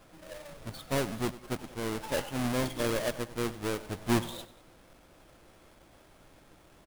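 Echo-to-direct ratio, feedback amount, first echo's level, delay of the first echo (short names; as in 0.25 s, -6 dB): -16.0 dB, 42%, -17.0 dB, 96 ms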